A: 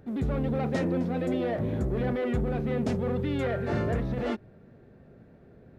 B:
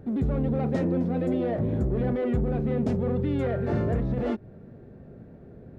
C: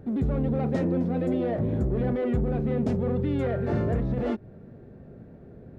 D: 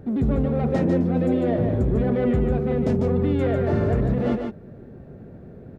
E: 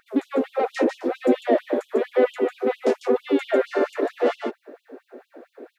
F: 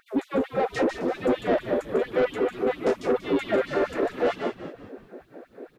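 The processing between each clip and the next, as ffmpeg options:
-filter_complex "[0:a]tiltshelf=f=970:g=5,asplit=2[s0][s1];[s1]acompressor=threshold=0.0282:ratio=6,volume=1.41[s2];[s0][s2]amix=inputs=2:normalize=0,volume=0.562"
-af anull
-af "aecho=1:1:148:0.562,volume=1.5"
-af "afftfilt=real='re*gte(b*sr/1024,230*pow(2900/230,0.5+0.5*sin(2*PI*4.4*pts/sr)))':imag='im*gte(b*sr/1024,230*pow(2900/230,0.5+0.5*sin(2*PI*4.4*pts/sr)))':win_size=1024:overlap=0.75,volume=2.37"
-filter_complex "[0:a]asoftclip=type=tanh:threshold=0.15,asplit=2[s0][s1];[s1]asplit=4[s2][s3][s4][s5];[s2]adelay=188,afreqshift=-69,volume=0.282[s6];[s3]adelay=376,afreqshift=-138,volume=0.122[s7];[s4]adelay=564,afreqshift=-207,volume=0.0519[s8];[s5]adelay=752,afreqshift=-276,volume=0.0224[s9];[s6][s7][s8][s9]amix=inputs=4:normalize=0[s10];[s0][s10]amix=inputs=2:normalize=0"

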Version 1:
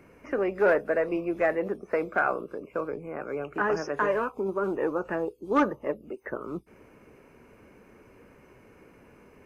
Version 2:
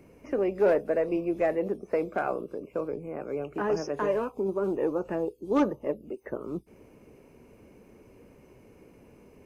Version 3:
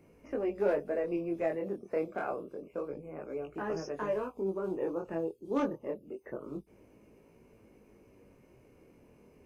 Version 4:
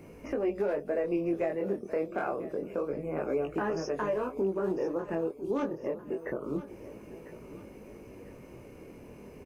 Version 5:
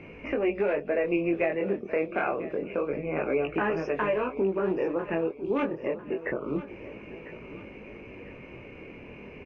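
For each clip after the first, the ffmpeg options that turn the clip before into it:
-af "equalizer=f=1500:w=1.1:g=-11.5,volume=1.19"
-af "flanger=delay=18:depth=7.2:speed=0.27,volume=0.708"
-filter_complex "[0:a]asplit=2[s0][s1];[s1]acompressor=threshold=0.01:ratio=6,volume=1.12[s2];[s0][s2]amix=inputs=2:normalize=0,alimiter=level_in=1.26:limit=0.0631:level=0:latency=1:release=428,volume=0.794,aecho=1:1:999|1998|2997:0.178|0.0676|0.0257,volume=1.68"
-af "lowpass=f=2500:t=q:w=4.1,volume=1.41"

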